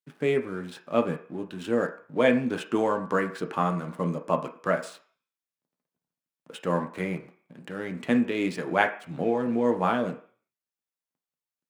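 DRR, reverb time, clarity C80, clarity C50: 4.0 dB, 0.45 s, 15.5 dB, 12.0 dB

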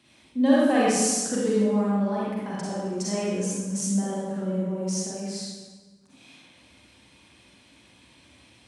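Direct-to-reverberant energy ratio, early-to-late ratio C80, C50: -7.5 dB, -0.5 dB, -4.5 dB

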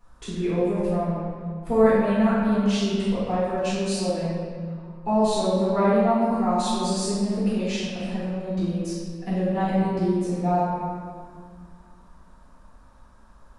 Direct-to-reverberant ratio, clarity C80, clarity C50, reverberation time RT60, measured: -14.0 dB, 0.0 dB, -3.0 dB, 2.0 s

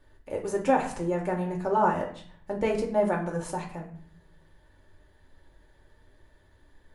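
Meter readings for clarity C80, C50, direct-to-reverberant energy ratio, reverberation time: 12.0 dB, 8.5 dB, -1.0 dB, 0.55 s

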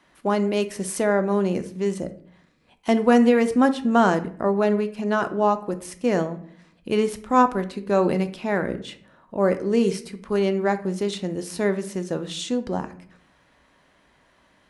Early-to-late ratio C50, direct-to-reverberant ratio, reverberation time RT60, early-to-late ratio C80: 14.0 dB, 9.0 dB, 0.60 s, 18.0 dB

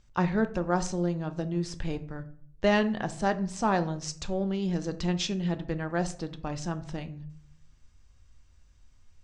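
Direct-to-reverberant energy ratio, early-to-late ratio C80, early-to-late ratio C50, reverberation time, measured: 9.0 dB, 20.0 dB, 16.0 dB, 0.60 s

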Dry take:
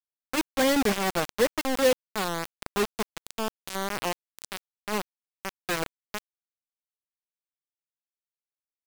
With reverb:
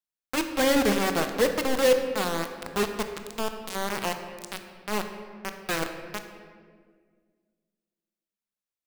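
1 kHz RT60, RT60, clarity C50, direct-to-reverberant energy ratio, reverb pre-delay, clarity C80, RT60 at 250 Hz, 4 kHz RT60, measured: 1.5 s, 1.8 s, 7.5 dB, 6.0 dB, 21 ms, 9.0 dB, 2.5 s, 1.1 s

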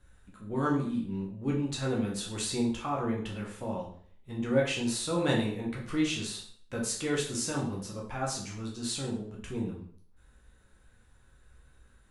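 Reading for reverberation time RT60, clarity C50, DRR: 0.55 s, 6.0 dB, -3.5 dB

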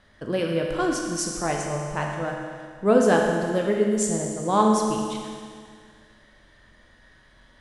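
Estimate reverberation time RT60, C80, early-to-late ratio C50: 2.0 s, 3.5 dB, 2.0 dB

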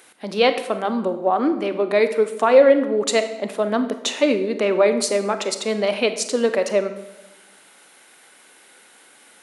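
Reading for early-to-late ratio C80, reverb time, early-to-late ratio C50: 13.0 dB, 0.95 s, 11.0 dB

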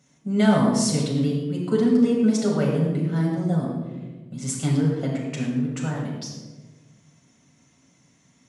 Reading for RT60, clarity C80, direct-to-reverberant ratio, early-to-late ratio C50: 1.3 s, 4.0 dB, -4.0 dB, 2.0 dB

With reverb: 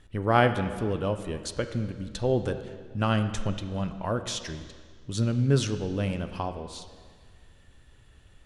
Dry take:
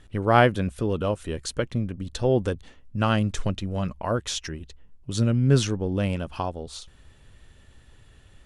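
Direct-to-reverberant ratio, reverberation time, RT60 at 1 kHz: 8.5 dB, 1.8 s, 1.8 s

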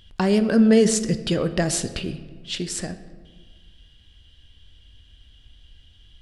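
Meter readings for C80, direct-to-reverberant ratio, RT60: 14.0 dB, 10.0 dB, 1.5 s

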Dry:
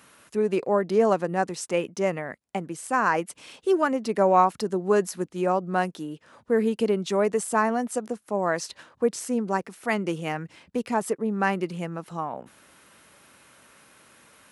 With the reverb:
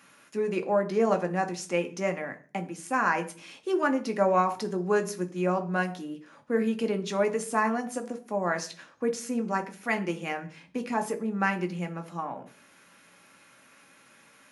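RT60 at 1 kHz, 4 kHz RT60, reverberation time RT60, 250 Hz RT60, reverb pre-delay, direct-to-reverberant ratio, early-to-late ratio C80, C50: 0.35 s, 0.50 s, 0.40 s, 0.60 s, 3 ms, 5.0 dB, 20.0 dB, 16.0 dB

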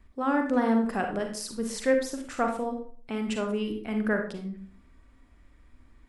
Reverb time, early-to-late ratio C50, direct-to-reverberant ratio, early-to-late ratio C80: 0.45 s, 6.0 dB, 3.5 dB, 11.5 dB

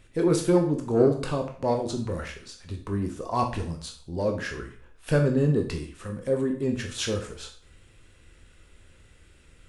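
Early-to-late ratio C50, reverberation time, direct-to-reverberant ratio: 9.0 dB, 0.50 s, 3.0 dB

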